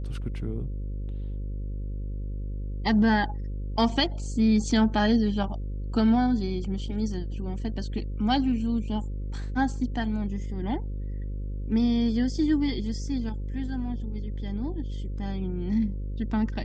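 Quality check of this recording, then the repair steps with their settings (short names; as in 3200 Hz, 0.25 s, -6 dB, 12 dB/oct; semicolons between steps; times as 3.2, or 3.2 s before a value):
buzz 50 Hz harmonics 11 -32 dBFS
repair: de-hum 50 Hz, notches 11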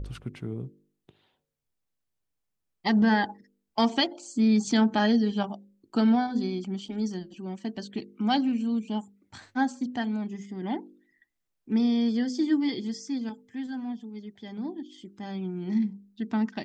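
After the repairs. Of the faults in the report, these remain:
none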